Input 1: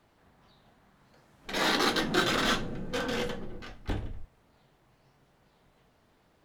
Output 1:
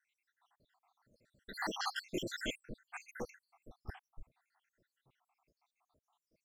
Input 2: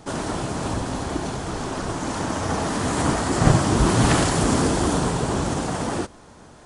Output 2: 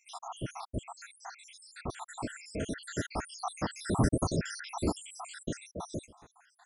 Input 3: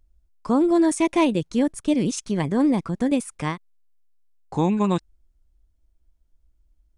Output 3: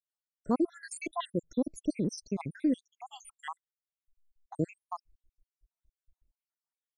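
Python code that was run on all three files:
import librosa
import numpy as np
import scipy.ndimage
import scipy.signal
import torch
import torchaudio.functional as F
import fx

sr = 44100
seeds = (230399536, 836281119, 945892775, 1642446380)

y = fx.spec_dropout(x, sr, seeds[0], share_pct=82)
y = y * 10.0 ** (-6.5 / 20.0)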